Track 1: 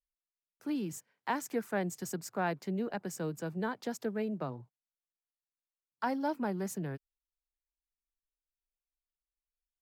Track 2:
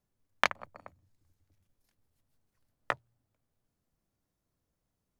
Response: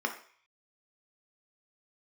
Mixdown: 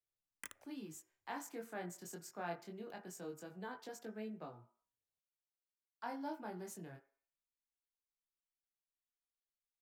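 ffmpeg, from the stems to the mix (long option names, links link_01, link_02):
-filter_complex "[0:a]flanger=delay=17.5:depth=6.1:speed=0.21,volume=-4dB,asplit=3[link_01][link_02][link_03];[link_02]volume=-14.5dB[link_04];[1:a]aeval=exprs='(mod(7.5*val(0)+1,2)-1)/7.5':channel_layout=same,asplit=2[link_05][link_06];[link_06]afreqshift=1.8[link_07];[link_05][link_07]amix=inputs=2:normalize=1,volume=-12.5dB,asplit=2[link_08][link_09];[link_09]volume=-22.5dB[link_10];[link_03]apad=whole_len=229181[link_11];[link_08][link_11]sidechaincompress=threshold=-60dB:ratio=8:attack=16:release=162[link_12];[2:a]atrim=start_sample=2205[link_13];[link_04][link_10]amix=inputs=2:normalize=0[link_14];[link_14][link_13]afir=irnorm=-1:irlink=0[link_15];[link_01][link_12][link_15]amix=inputs=3:normalize=0,lowshelf=frequency=350:gain=-9"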